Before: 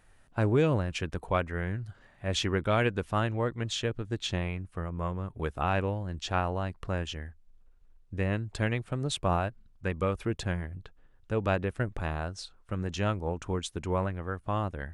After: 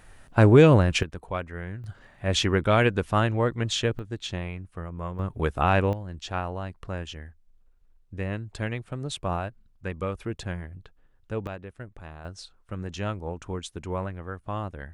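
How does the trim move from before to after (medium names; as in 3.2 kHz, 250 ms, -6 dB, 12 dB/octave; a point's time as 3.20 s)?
+10 dB
from 1.03 s -3 dB
from 1.84 s +5.5 dB
from 3.99 s -1 dB
from 5.19 s +6.5 dB
from 5.93 s -1.5 dB
from 11.47 s -10 dB
from 12.25 s -1.5 dB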